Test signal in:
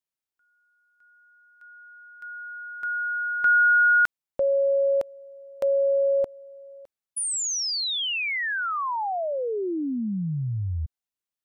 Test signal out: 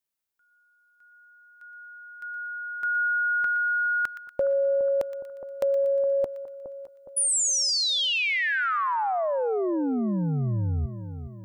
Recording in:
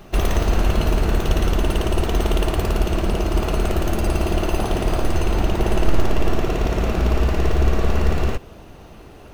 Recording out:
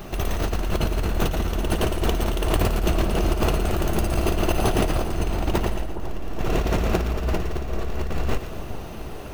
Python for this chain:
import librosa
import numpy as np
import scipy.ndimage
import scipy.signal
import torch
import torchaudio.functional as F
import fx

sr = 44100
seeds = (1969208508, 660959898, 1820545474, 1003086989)

y = fx.high_shelf(x, sr, hz=11000.0, db=6.5)
y = fx.over_compress(y, sr, threshold_db=-23.0, ratio=-1.0)
y = fx.echo_split(y, sr, split_hz=1200.0, low_ms=415, high_ms=119, feedback_pct=52, wet_db=-11)